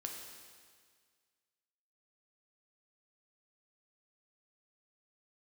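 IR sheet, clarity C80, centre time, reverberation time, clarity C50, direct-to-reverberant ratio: 4.5 dB, 62 ms, 1.8 s, 3.0 dB, 1.0 dB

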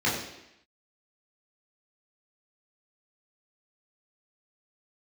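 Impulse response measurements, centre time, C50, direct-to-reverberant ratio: 48 ms, 4.0 dB, −7.5 dB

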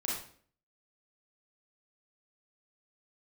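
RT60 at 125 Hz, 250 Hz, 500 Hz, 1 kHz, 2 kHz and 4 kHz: 0.65, 0.60, 0.55, 0.45, 0.45, 0.45 seconds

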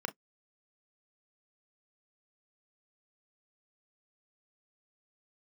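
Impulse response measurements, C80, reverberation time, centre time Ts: 48.5 dB, non-exponential decay, 7 ms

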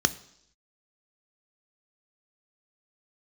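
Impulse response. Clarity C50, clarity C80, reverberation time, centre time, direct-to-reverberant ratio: 18.5 dB, 21.0 dB, 0.75 s, 4 ms, 12.0 dB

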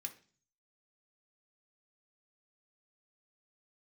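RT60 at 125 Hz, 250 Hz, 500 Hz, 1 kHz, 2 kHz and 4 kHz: 0.80, 0.55, 0.45, 0.40, 0.40, 0.50 seconds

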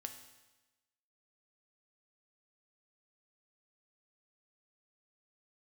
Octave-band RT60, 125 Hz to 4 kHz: 1.1, 1.1, 1.1, 1.1, 1.1, 1.1 seconds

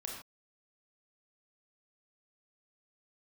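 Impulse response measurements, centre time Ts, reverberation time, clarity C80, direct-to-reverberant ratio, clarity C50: 43 ms, non-exponential decay, 5.5 dB, −1.0 dB, 2.5 dB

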